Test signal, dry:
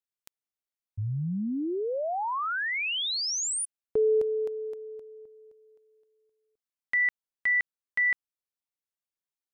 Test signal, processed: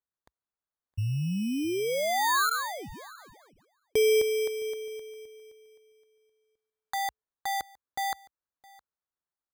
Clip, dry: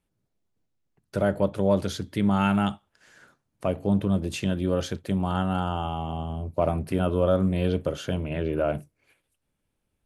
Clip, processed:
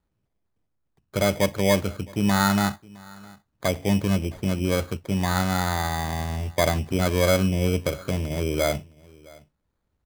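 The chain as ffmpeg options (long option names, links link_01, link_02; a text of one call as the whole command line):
ffmpeg -i in.wav -filter_complex "[0:a]lowpass=frequency=1200:width_type=q:width=1.9,equalizer=frequency=61:width_type=o:width=1.1:gain=7,acrusher=samples=16:mix=1:aa=0.000001,asplit=2[link_01][link_02];[link_02]aecho=0:1:664:0.0631[link_03];[link_01][link_03]amix=inputs=2:normalize=0" out.wav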